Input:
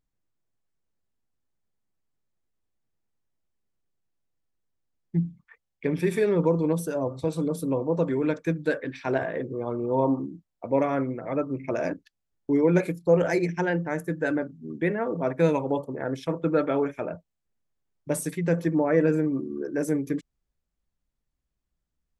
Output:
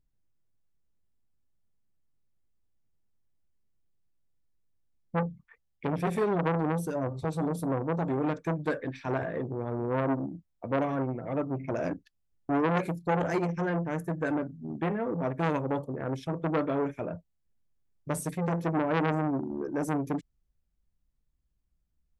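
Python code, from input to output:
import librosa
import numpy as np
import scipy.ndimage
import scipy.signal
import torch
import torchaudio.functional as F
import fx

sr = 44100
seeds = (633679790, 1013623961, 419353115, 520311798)

y = fx.low_shelf(x, sr, hz=220.0, db=11.0)
y = fx.transformer_sat(y, sr, knee_hz=1200.0)
y = y * librosa.db_to_amplitude(-4.5)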